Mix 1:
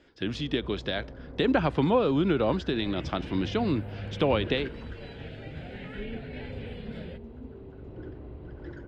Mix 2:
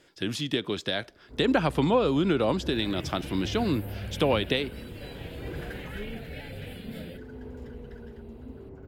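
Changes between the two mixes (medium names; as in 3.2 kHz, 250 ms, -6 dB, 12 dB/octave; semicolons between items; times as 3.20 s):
first sound: entry +1.05 s; master: remove distance through air 150 m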